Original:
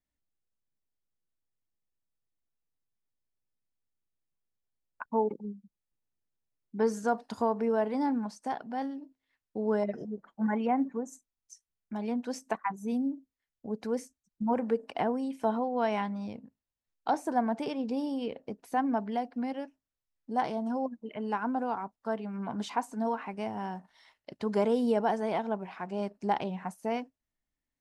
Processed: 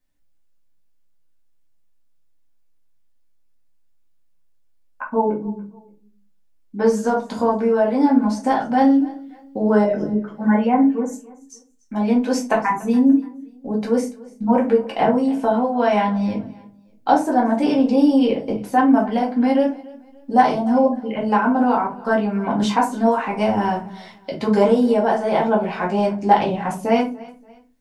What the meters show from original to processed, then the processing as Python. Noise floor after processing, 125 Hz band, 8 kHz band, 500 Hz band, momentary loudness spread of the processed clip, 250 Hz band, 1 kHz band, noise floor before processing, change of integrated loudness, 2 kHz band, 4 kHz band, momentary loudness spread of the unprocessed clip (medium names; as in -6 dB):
-55 dBFS, +14.0 dB, +11.5 dB, +12.5 dB, 12 LU, +14.5 dB, +13.0 dB, under -85 dBFS, +13.5 dB, +13.5 dB, +13.0 dB, 11 LU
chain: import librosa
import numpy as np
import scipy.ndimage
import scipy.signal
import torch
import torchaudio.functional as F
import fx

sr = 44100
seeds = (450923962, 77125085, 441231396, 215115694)

p1 = fx.rider(x, sr, range_db=4, speed_s=0.5)
p2 = p1 + fx.echo_feedback(p1, sr, ms=288, feedback_pct=33, wet_db=-21.0, dry=0)
p3 = fx.room_shoebox(p2, sr, seeds[0], volume_m3=130.0, walls='furnished', distance_m=2.1)
y = p3 * librosa.db_to_amplitude(8.0)